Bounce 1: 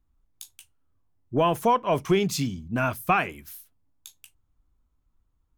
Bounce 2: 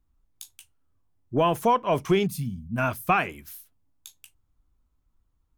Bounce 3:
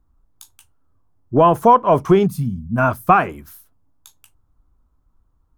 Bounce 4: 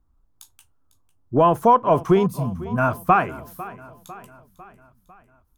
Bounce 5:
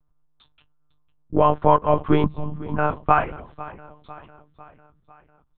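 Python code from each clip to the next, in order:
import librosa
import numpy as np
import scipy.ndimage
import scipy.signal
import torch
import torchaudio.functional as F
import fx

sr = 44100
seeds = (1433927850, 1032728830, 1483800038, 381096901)

y1 = fx.spec_box(x, sr, start_s=2.27, length_s=0.51, low_hz=250.0, high_hz=8400.0, gain_db=-14)
y2 = fx.high_shelf_res(y1, sr, hz=1700.0, db=-8.5, q=1.5)
y2 = y2 * 10.0 ** (8.5 / 20.0)
y3 = fx.echo_feedback(y2, sr, ms=500, feedback_pct=54, wet_db=-18.0)
y3 = y3 * 10.0 ** (-3.5 / 20.0)
y4 = fx.lpc_monotone(y3, sr, seeds[0], pitch_hz=150.0, order=10)
y4 = y4 * 10.0 ** (-1.0 / 20.0)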